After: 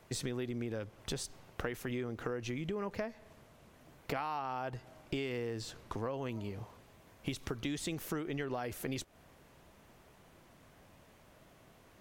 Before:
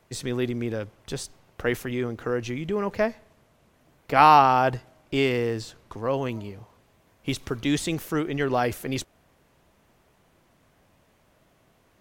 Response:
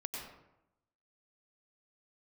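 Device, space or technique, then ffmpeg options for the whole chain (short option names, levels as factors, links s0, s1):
serial compression, leveller first: -af "acompressor=threshold=0.0631:ratio=2.5,acompressor=threshold=0.0141:ratio=6,volume=1.19"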